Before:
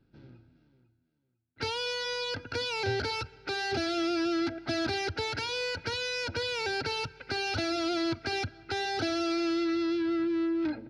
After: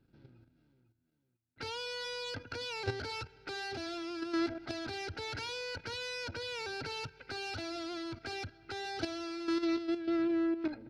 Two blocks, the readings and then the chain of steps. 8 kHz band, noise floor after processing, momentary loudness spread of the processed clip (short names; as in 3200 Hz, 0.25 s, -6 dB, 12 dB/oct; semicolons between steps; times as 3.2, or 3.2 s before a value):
-7.0 dB, -79 dBFS, 9 LU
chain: one diode to ground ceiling -25 dBFS; level quantiser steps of 10 dB